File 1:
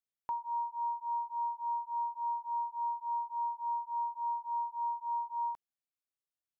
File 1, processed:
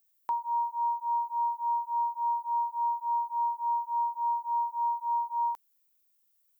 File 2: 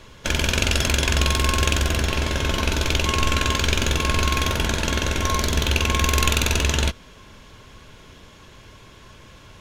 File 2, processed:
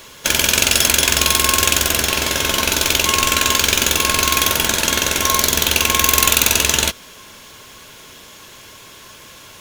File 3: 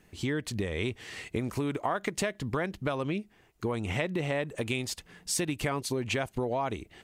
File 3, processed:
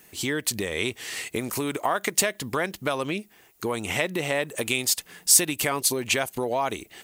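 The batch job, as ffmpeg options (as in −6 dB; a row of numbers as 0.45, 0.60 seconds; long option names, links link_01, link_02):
-af "aemphasis=mode=production:type=bsi,acontrast=74,volume=-1dB"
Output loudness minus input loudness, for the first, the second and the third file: +5.5, +7.0, +7.5 LU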